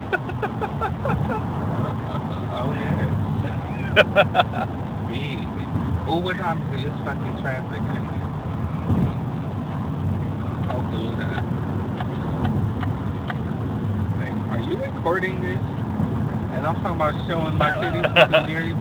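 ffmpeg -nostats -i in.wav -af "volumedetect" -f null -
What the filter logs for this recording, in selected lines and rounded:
mean_volume: -23.2 dB
max_volume: -1.3 dB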